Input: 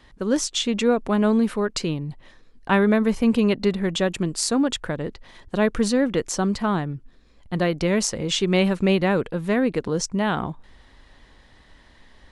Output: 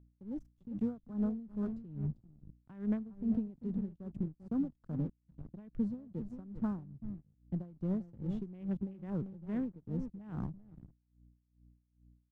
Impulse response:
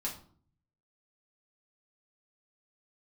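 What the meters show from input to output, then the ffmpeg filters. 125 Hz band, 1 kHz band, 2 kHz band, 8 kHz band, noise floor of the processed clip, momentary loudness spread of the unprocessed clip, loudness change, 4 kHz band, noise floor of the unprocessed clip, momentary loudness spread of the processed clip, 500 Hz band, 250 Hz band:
−12.0 dB, −27.5 dB, below −30 dB, below −40 dB, −77 dBFS, 10 LU, −16.5 dB, below −40 dB, −54 dBFS, 10 LU, −25.0 dB, −14.0 dB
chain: -filter_complex "[0:a]asplit=2[link_01][link_02];[link_02]adelay=394,lowpass=frequency=2000:poles=1,volume=-10dB,asplit=2[link_03][link_04];[link_04]adelay=394,lowpass=frequency=2000:poles=1,volume=0.2,asplit=2[link_05][link_06];[link_06]adelay=394,lowpass=frequency=2000:poles=1,volume=0.2[link_07];[link_03][link_05][link_07]amix=inputs=3:normalize=0[link_08];[link_01][link_08]amix=inputs=2:normalize=0,acrossover=split=3100[link_09][link_10];[link_10]acompressor=threshold=-35dB:ratio=4:attack=1:release=60[link_11];[link_09][link_11]amix=inputs=2:normalize=0,acrossover=split=240[link_12][link_13];[link_12]asoftclip=type=tanh:threshold=-33.5dB[link_14];[link_14][link_13]amix=inputs=2:normalize=0,afwtdn=0.0501,aeval=exprs='sgn(val(0))*max(abs(val(0))-0.0119,0)':channel_layout=same,acompressor=threshold=-24dB:ratio=6,firequalizer=gain_entry='entry(130,0);entry(440,-22);entry(2400,-27)':delay=0.05:min_phase=1,aeval=exprs='val(0)+0.000501*(sin(2*PI*60*n/s)+sin(2*PI*2*60*n/s)/2+sin(2*PI*3*60*n/s)/3+sin(2*PI*4*60*n/s)/4+sin(2*PI*5*60*n/s)/5)':channel_layout=same,aeval=exprs='val(0)*pow(10,-19*(0.5-0.5*cos(2*PI*2.4*n/s))/20)':channel_layout=same,volume=7dB"

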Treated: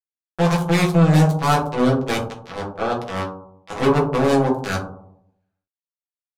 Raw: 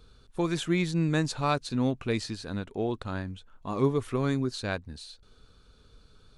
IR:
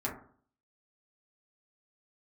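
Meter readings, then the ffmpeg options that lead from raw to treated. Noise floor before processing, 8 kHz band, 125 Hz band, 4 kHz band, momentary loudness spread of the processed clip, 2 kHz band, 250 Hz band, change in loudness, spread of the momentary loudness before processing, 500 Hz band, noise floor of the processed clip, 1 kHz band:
−59 dBFS, +7.5 dB, +11.0 dB, +6.5 dB, 16 LU, +9.0 dB, +9.0 dB, +10.5 dB, 14 LU, +10.5 dB, below −85 dBFS, +13.0 dB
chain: -filter_complex "[0:a]acrusher=bits=3:mix=0:aa=0.5,tiltshelf=frequency=730:gain=-6,aeval=exprs='(tanh(14.1*val(0)+0.7)-tanh(0.7))/14.1':channel_layout=same[link_01];[1:a]atrim=start_sample=2205,asetrate=28224,aresample=44100[link_02];[link_01][link_02]afir=irnorm=-1:irlink=0,volume=5.5dB"

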